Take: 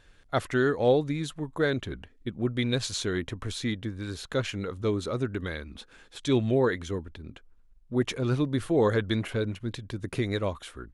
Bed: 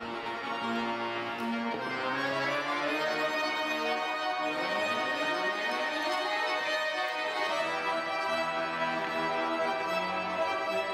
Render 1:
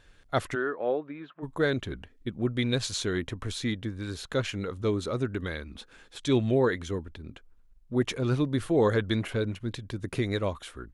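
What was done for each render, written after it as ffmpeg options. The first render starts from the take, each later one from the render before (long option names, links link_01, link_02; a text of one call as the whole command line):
ffmpeg -i in.wav -filter_complex "[0:a]asplit=3[link_01][link_02][link_03];[link_01]afade=type=out:start_time=0.54:duration=0.02[link_04];[link_02]highpass=440,equalizer=frequency=480:width_type=q:width=4:gain=-5,equalizer=frequency=820:width_type=q:width=4:gain=-6,equalizer=frequency=2000:width_type=q:width=4:gain=-8,lowpass=frequency=2200:width=0.5412,lowpass=frequency=2200:width=1.3066,afade=type=in:start_time=0.54:duration=0.02,afade=type=out:start_time=1.42:duration=0.02[link_05];[link_03]afade=type=in:start_time=1.42:duration=0.02[link_06];[link_04][link_05][link_06]amix=inputs=3:normalize=0" out.wav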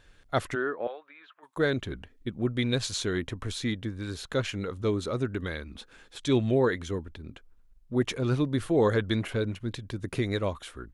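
ffmpeg -i in.wav -filter_complex "[0:a]asettb=1/sr,asplit=3[link_01][link_02][link_03];[link_01]atrim=end=0.874[link_04];[link_02]atrim=start=0.87:end=1.57,asetpts=PTS-STARTPTS,afade=type=in:duration=0.004:curve=qsin,afade=type=out:start_time=0.696:duration=0.004:curve=qsin,highpass=1100[link_05];[link_03]atrim=start=1.566[link_06];[link_04][link_05]acrossfade=duration=0.004:curve1=hsin:curve2=qsin[link_07];[link_07][link_06]acrossfade=duration=0.004:curve1=qsin:curve2=hsin" out.wav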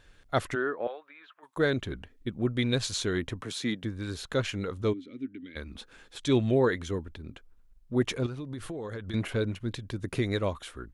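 ffmpeg -i in.wav -filter_complex "[0:a]asettb=1/sr,asplit=3[link_01][link_02][link_03];[link_01]atrim=end=3.414[link_04];[link_02]atrim=start=3.41:end=3.84,asetpts=PTS-STARTPTS,afade=type=in:duration=0.004:curve=qsin,afade=type=out:start_time=0.426:duration=0.004:curve=qsin,highpass=frequency=140:width=0.5412,highpass=frequency=140:width=1.3066[link_05];[link_03]atrim=start=3.836[link_06];[link_04][link_05]acrossfade=duration=0.004:curve1=hsin:curve2=qsin[link_07];[link_07][link_06]acrossfade=duration=0.004:curve1=qsin:curve2=hsin,asplit=3[link_08][link_09][link_10];[link_08]afade=type=out:start_time=4.92:duration=0.02[link_11];[link_09]asplit=3[link_12][link_13][link_14];[link_12]bandpass=frequency=270:width_type=q:width=8,volume=0dB[link_15];[link_13]bandpass=frequency=2290:width_type=q:width=8,volume=-6dB[link_16];[link_14]bandpass=frequency=3010:width_type=q:width=8,volume=-9dB[link_17];[link_15][link_16][link_17]amix=inputs=3:normalize=0,afade=type=in:start_time=4.92:duration=0.02,afade=type=out:start_time=5.55:duration=0.02[link_18];[link_10]afade=type=in:start_time=5.55:duration=0.02[link_19];[link_11][link_18][link_19]amix=inputs=3:normalize=0,asettb=1/sr,asplit=3[link_20][link_21][link_22];[link_20]atrim=end=8.264[link_23];[link_21]atrim=start=8.26:end=9.14,asetpts=PTS-STARTPTS,afade=type=in:duration=0.004:curve=qsin,afade=type=out:start_time=0.876:duration=0.004:curve=qsin,acompressor=threshold=-33dB:ratio=16:attack=3.2:release=140:knee=1:detection=peak[link_24];[link_22]atrim=start=9.136[link_25];[link_23][link_24]acrossfade=duration=0.004:curve1=hsin:curve2=qsin[link_26];[link_26][link_25]acrossfade=duration=0.004:curve1=qsin:curve2=hsin" out.wav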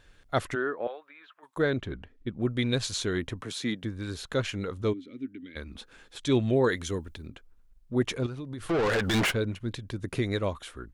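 ffmpeg -i in.wav -filter_complex "[0:a]asettb=1/sr,asplit=3[link_01][link_02][link_03];[link_01]atrim=end=1.624[link_04];[link_02]atrim=start=1.62:end=2.4,asetpts=PTS-STARTPTS,afade=type=in:duration=0.004:curve=qsin,afade=type=out:start_time=0.776:duration=0.004:curve=qsin,aemphasis=mode=reproduction:type=50kf[link_05];[link_03]atrim=start=2.396[link_06];[link_04][link_05]acrossfade=duration=0.004:curve1=hsin:curve2=qsin[link_07];[link_07][link_06]acrossfade=duration=0.004:curve1=qsin:curve2=hsin,asettb=1/sr,asplit=3[link_08][link_09][link_10];[link_08]atrim=end=6.644[link_11];[link_09]atrim=start=6.64:end=7.28,asetpts=PTS-STARTPTS,afade=type=in:duration=0.004:curve=qsin,afade=type=out:start_time=0.636:duration=0.004:curve=qsin,highshelf=frequency=4000:gain=10[link_12];[link_10]atrim=start=7.276[link_13];[link_11][link_12]acrossfade=duration=0.004:curve1=hsin:curve2=qsin[link_14];[link_14][link_13]acrossfade=duration=0.004:curve1=qsin:curve2=hsin,asplit=3[link_15][link_16][link_17];[link_15]afade=type=out:start_time=8.69:duration=0.02[link_18];[link_16]asplit=2[link_19][link_20];[link_20]highpass=frequency=720:poles=1,volume=34dB,asoftclip=type=tanh:threshold=-18dB[link_21];[link_19][link_21]amix=inputs=2:normalize=0,lowpass=frequency=5800:poles=1,volume=-6dB,afade=type=in:start_time=8.69:duration=0.02,afade=type=out:start_time=9.3:duration=0.02[link_22];[link_17]afade=type=in:start_time=9.3:duration=0.02[link_23];[link_18][link_22][link_23]amix=inputs=3:normalize=0" out.wav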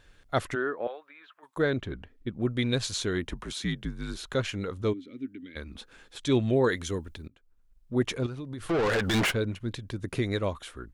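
ffmpeg -i in.wav -filter_complex "[0:a]asettb=1/sr,asplit=3[link_01][link_02][link_03];[link_01]atrim=end=3.254[link_04];[link_02]atrim=start=3.25:end=4.35,asetpts=PTS-STARTPTS,afade=type=in:duration=0.004:curve=qsin,afade=type=out:start_time=1.096:duration=0.004:curve=qsin,afreqshift=-57[link_05];[link_03]atrim=start=4.346[link_06];[link_04][link_05]acrossfade=duration=0.004:curve1=hsin:curve2=qsin[link_07];[link_07][link_06]acrossfade=duration=0.004:curve1=qsin:curve2=hsin,asplit=2[link_08][link_09];[link_08]atrim=end=7.28,asetpts=PTS-STARTPTS,afade=type=out:start_time=7.276:duration=0.004:curve=hsin:silence=0.0891251[link_10];[link_09]atrim=start=7.28,asetpts=PTS-STARTPTS,afade=type=in:duration=0.65:silence=0.0891251[link_11];[link_10][link_11]concat=n=2:v=0:a=1" out.wav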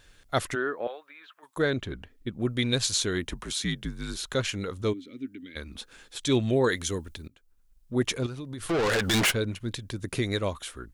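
ffmpeg -i in.wav -af "highshelf=frequency=3700:gain=9.5" out.wav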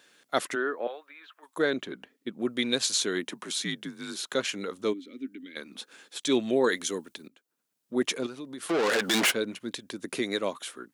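ffmpeg -i in.wav -af "highpass=frequency=210:width=0.5412,highpass=frequency=210:width=1.3066" out.wav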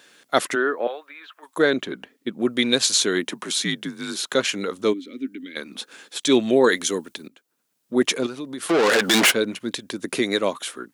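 ffmpeg -i in.wav -af "volume=7.5dB" out.wav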